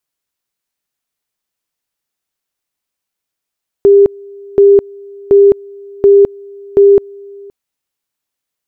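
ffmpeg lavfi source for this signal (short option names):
-f lavfi -i "aevalsrc='pow(10,(-2-27*gte(mod(t,0.73),0.21))/20)*sin(2*PI*400*t)':d=3.65:s=44100"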